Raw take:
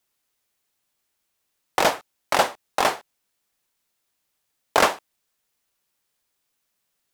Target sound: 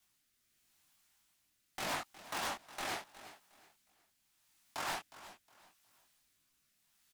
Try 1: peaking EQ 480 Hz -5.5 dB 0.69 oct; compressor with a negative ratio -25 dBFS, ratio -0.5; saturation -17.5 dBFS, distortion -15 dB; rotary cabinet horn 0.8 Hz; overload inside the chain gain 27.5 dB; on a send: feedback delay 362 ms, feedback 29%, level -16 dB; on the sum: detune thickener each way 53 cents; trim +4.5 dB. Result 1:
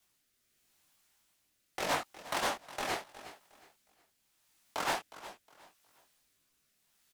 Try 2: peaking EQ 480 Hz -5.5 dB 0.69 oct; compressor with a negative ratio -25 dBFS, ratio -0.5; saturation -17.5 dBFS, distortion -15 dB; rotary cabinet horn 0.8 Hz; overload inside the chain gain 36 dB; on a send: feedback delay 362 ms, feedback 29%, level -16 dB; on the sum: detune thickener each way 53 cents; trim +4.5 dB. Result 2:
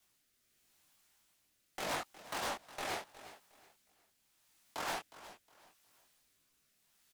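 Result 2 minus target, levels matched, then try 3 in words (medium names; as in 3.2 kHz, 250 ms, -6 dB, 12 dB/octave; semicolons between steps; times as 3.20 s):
500 Hz band +3.0 dB
peaking EQ 480 Hz -13 dB 0.69 oct; compressor with a negative ratio -25 dBFS, ratio -0.5; saturation -17.5 dBFS, distortion -13 dB; rotary cabinet horn 0.8 Hz; overload inside the chain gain 36 dB; on a send: feedback delay 362 ms, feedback 29%, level -16 dB; on the sum: detune thickener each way 53 cents; trim +4.5 dB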